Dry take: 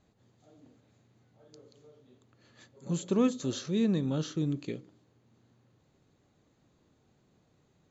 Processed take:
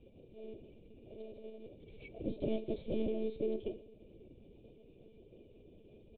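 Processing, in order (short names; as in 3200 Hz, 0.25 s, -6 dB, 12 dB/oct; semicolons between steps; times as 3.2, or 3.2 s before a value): cycle switcher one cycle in 3, muted; LPF 2800 Hz; bell 300 Hz +10.5 dB 0.39 oct; compressor 2:1, threshold -53 dBFS, peak gain reduction 18 dB; varispeed +28%; tube stage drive 41 dB, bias 0.75; brick-wall FIR band-stop 710–2200 Hz; on a send: feedback echo 0.108 s, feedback 39%, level -19 dB; on the sum: monotone LPC vocoder at 8 kHz 220 Hz; gain +13.5 dB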